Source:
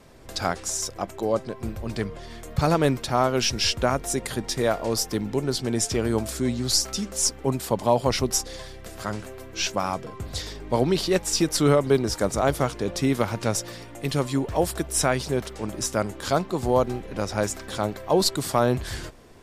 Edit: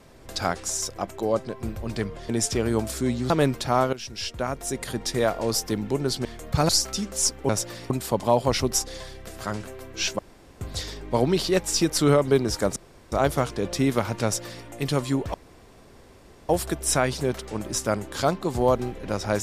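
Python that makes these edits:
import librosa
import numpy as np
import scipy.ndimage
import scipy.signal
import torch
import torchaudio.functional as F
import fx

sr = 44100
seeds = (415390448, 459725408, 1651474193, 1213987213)

y = fx.edit(x, sr, fx.swap(start_s=2.29, length_s=0.44, other_s=5.68, other_length_s=1.01),
    fx.fade_in_from(start_s=3.36, length_s=1.18, floor_db=-16.5),
    fx.room_tone_fill(start_s=9.78, length_s=0.42),
    fx.insert_room_tone(at_s=12.35, length_s=0.36),
    fx.duplicate(start_s=13.47, length_s=0.41, to_s=7.49),
    fx.insert_room_tone(at_s=14.57, length_s=1.15), tone=tone)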